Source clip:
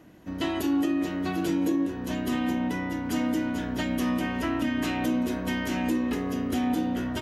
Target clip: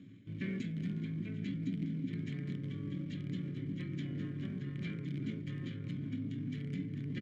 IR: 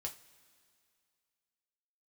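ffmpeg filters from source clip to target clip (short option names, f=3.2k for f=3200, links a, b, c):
-filter_complex "[0:a]asplit=2[a][b];[b]adelay=361,lowpass=f=900:p=1,volume=-3.5dB,asplit=2[c][d];[d]adelay=361,lowpass=f=900:p=1,volume=0.29,asplit=2[e][f];[f]adelay=361,lowpass=f=900:p=1,volume=0.29,asplit=2[g][h];[h]adelay=361,lowpass=f=900:p=1,volume=0.29[i];[a][c][e][g][i]amix=inputs=5:normalize=0,asplit=2[j][k];[k]acrusher=bits=4:dc=4:mix=0:aa=0.000001,volume=-8.5dB[l];[j][l]amix=inputs=2:normalize=0,acontrast=37,equalizer=f=190:t=o:w=0.44:g=13.5,asetrate=25476,aresample=44100,atempo=1.73107,bandreject=f=780:w=19,areverse,acompressor=threshold=-24dB:ratio=12,areverse,asplit=3[m][n][o];[m]bandpass=f=270:t=q:w=8,volume=0dB[p];[n]bandpass=f=2.29k:t=q:w=8,volume=-6dB[q];[o]bandpass=f=3.01k:t=q:w=8,volume=-9dB[r];[p][q][r]amix=inputs=3:normalize=0,volume=6.5dB"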